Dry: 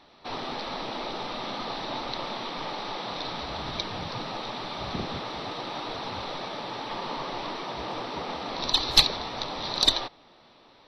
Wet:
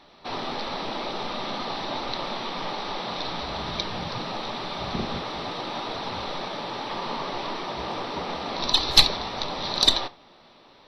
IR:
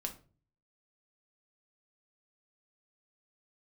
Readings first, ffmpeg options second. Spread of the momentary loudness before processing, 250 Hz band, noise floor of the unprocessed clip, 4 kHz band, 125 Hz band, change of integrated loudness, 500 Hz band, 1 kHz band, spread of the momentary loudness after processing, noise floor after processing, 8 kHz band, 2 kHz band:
12 LU, +3.0 dB, −56 dBFS, +2.5 dB, +2.5 dB, +2.5 dB, +2.5 dB, +2.5 dB, 12 LU, −54 dBFS, +2.5 dB, +2.5 dB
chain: -filter_complex "[0:a]asplit=2[link_01][link_02];[1:a]atrim=start_sample=2205,atrim=end_sample=3969[link_03];[link_02][link_03]afir=irnorm=-1:irlink=0,volume=-4dB[link_04];[link_01][link_04]amix=inputs=2:normalize=0,volume=-1dB"

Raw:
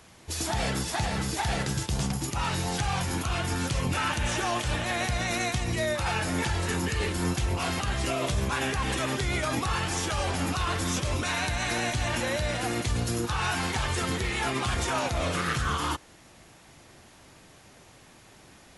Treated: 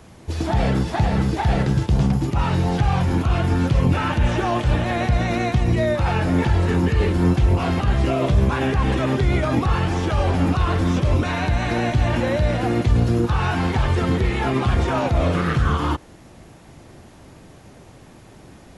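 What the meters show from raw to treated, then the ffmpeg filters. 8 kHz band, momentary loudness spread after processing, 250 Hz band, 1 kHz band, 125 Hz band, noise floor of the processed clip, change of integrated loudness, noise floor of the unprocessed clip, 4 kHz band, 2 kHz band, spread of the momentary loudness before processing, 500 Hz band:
−8.0 dB, 2 LU, +11.0 dB, +5.5 dB, +12.0 dB, −46 dBFS, +8.0 dB, −54 dBFS, −1.0 dB, +2.0 dB, 2 LU, +9.0 dB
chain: -filter_complex "[0:a]tiltshelf=frequency=880:gain=6,acrossover=split=4600[link_01][link_02];[link_02]acompressor=threshold=-55dB:ratio=4:attack=1:release=60[link_03];[link_01][link_03]amix=inputs=2:normalize=0,volume=6dB"

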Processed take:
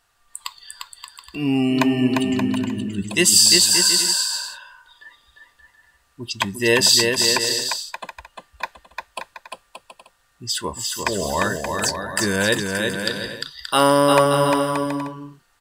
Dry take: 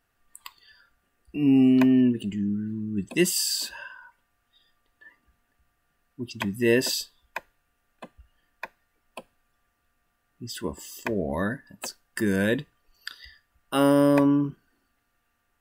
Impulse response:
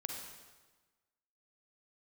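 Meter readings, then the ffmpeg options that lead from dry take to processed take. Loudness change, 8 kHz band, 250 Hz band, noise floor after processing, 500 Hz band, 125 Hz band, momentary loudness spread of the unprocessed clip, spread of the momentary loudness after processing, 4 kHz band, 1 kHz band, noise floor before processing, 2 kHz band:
+6.0 dB, +15.5 dB, +0.5 dB, −63 dBFS, +6.5 dB, +4.0 dB, 22 LU, 21 LU, +15.5 dB, +12.5 dB, −74 dBFS, +10.0 dB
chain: -af "equalizer=frequency=250:width_type=o:width=1:gain=-6,equalizer=frequency=1000:width_type=o:width=1:gain=8,equalizer=frequency=4000:width_type=o:width=1:gain=9,equalizer=frequency=8000:width_type=o:width=1:gain=9,aecho=1:1:350|577.5|725.4|821.5|884:0.631|0.398|0.251|0.158|0.1,volume=3.5dB"

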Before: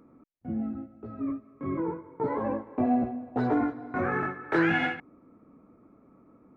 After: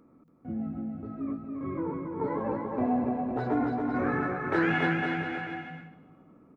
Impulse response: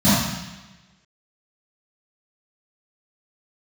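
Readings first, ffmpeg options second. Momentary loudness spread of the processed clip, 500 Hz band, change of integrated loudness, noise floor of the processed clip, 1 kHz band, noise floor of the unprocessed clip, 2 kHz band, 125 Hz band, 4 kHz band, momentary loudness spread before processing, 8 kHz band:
11 LU, 0.0 dB, −0.5 dB, −60 dBFS, 0.0 dB, −60 dBFS, 0.0 dB, +2.0 dB, 0.0 dB, 11 LU, can't be measured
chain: -filter_complex "[0:a]aecho=1:1:280|504|683.2|826.6|941.2:0.631|0.398|0.251|0.158|0.1,asplit=2[link_01][link_02];[1:a]atrim=start_sample=2205,asetrate=35280,aresample=44100,adelay=113[link_03];[link_02][link_03]afir=irnorm=-1:irlink=0,volume=-41dB[link_04];[link_01][link_04]amix=inputs=2:normalize=0,volume=-2.5dB"

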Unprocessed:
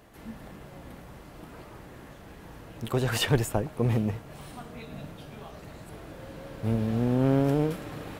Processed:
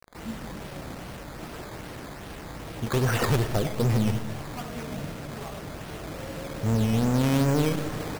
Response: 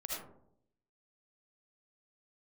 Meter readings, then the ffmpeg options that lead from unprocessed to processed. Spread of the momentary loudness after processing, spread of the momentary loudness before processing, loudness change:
16 LU, 22 LU, −0.5 dB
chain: -filter_complex "[0:a]lowpass=frequency=3300:width=0.5412,lowpass=frequency=3300:width=1.3066,aresample=16000,asoftclip=type=tanh:threshold=-24.5dB,aresample=44100,aecho=1:1:219:0.0794,acrusher=bits=7:mix=0:aa=0.000001,asplit=2[link_01][link_02];[1:a]atrim=start_sample=2205[link_03];[link_02][link_03]afir=irnorm=-1:irlink=0,volume=-7.5dB[link_04];[link_01][link_04]amix=inputs=2:normalize=0,acrusher=samples=11:mix=1:aa=0.000001:lfo=1:lforange=11:lforate=2.5,volume=4dB"

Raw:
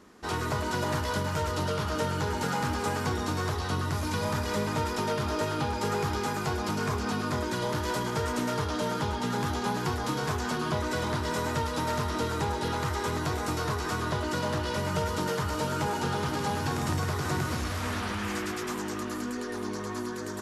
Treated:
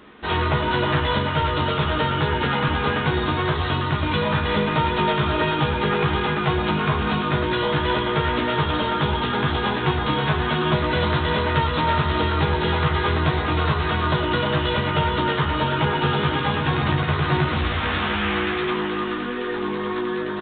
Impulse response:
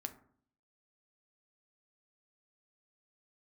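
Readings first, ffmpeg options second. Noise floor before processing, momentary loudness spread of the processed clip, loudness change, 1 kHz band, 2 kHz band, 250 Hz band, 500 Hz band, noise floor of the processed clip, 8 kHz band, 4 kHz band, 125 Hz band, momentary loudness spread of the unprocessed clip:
−35 dBFS, 2 LU, +8.5 dB, +8.5 dB, +10.5 dB, +7.5 dB, +7.5 dB, −26 dBFS, below −40 dB, +10.5 dB, +9.0 dB, 3 LU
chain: -filter_complex "[0:a]highshelf=frequency=2400:gain=10,asplit=2[link_01][link_02];[link_02]adelay=14,volume=-4.5dB[link_03];[link_01][link_03]amix=inputs=2:normalize=0,asplit=2[link_04][link_05];[1:a]atrim=start_sample=2205,asetrate=26901,aresample=44100[link_06];[link_05][link_06]afir=irnorm=-1:irlink=0,volume=1dB[link_07];[link_04][link_07]amix=inputs=2:normalize=0,aresample=8000,aresample=44100"

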